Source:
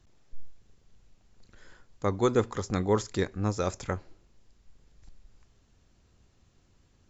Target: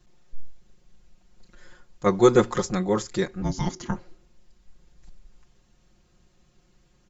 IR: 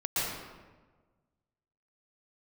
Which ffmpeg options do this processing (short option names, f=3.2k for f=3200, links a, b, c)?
-filter_complex "[0:a]aecho=1:1:5.6:0.97,asettb=1/sr,asplit=3[a][b][c];[a]atrim=end=2.064[d];[b]atrim=start=2.06:end=2.7,asetpts=PTS-STARTPTS,afade=t=in:d=0.004:c=qsin,afade=t=out:st=0.636:d=0.004:c=qsin,acontrast=34[e];[c]atrim=start=2.696[f];[d][e]acrossfade=d=0.004:c1=hsin:c2=qsin[g];[g][f]acrossfade=d=0.004:c1=qsin:c2=hsin,asettb=1/sr,asplit=3[h][i][j];[h]atrim=end=3.424[k];[i]atrim=start=3.42:end=3.96,asetpts=PTS-STARTPTS,afade=t=in:d=0.004:c=qsin,afade=t=out:st=0.536:d=0.004:c=qsin,afreqshift=-380[l];[j]atrim=start=3.956[m];[k][l]acrossfade=d=0.004:c1=hsin:c2=qsin[n];[n][m]acrossfade=d=0.004:c1=qsin:c2=hsin"